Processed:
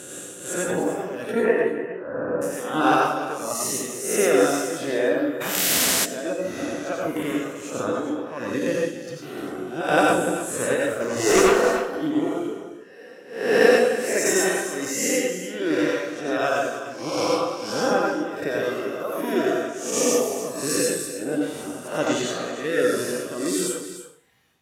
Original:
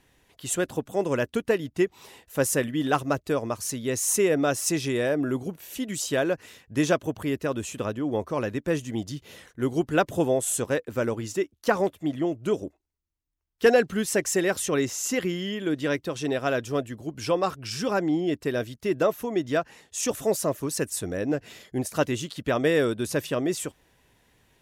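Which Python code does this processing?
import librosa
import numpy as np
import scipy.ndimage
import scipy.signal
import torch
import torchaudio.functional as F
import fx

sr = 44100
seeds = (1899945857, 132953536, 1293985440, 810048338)

y = fx.spec_swells(x, sr, rise_s=1.46)
y = fx.lowpass(y, sr, hz=fx.line((1.31, 2600.0), (2.41, 1300.0)), slope=24, at=(1.31, 2.41), fade=0.02)
y = fx.dereverb_blind(y, sr, rt60_s=1.0)
y = scipy.signal.sosfilt(scipy.signal.butter(2, 120.0, 'highpass', fs=sr, output='sos'), y)
y = fx.dereverb_blind(y, sr, rt60_s=0.8)
y = y * (1.0 - 0.88 / 2.0 + 0.88 / 2.0 * np.cos(2.0 * np.pi * 1.4 * (np.arange(len(y)) / sr)))
y = fx.fold_sine(y, sr, drive_db=fx.line((11.0, 12.0), (11.4, 8.0)), ceiling_db=-14.5, at=(11.0, 11.4), fade=0.02)
y = y + 10.0 ** (-12.0 / 20.0) * np.pad(y, (int(297 * sr / 1000.0), 0))[:len(y)]
y = fx.rev_plate(y, sr, seeds[0], rt60_s=0.52, hf_ratio=0.95, predelay_ms=75, drr_db=-2.0)
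y = fx.spectral_comp(y, sr, ratio=4.0, at=(5.4, 6.04), fade=0.02)
y = F.gain(torch.from_numpy(y), 1.0).numpy()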